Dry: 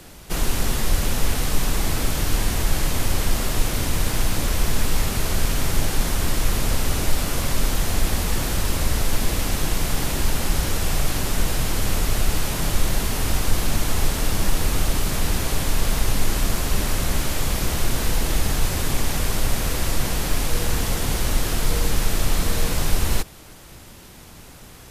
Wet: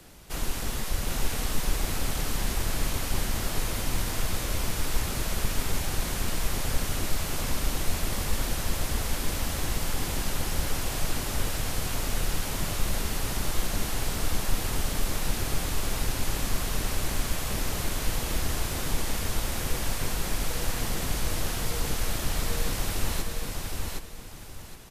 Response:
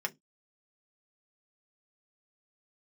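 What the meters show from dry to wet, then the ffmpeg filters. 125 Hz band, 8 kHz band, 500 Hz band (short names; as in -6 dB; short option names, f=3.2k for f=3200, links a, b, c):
-7.5 dB, -5.5 dB, -6.5 dB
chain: -filter_complex "[0:a]acrossover=split=430|2200[a][b][c];[a]aeval=exprs='clip(val(0),-1,0.0668)':c=same[d];[d][b][c]amix=inputs=3:normalize=0,aecho=1:1:766|1532|2298|3064:0.708|0.191|0.0516|0.0139,volume=-7.5dB"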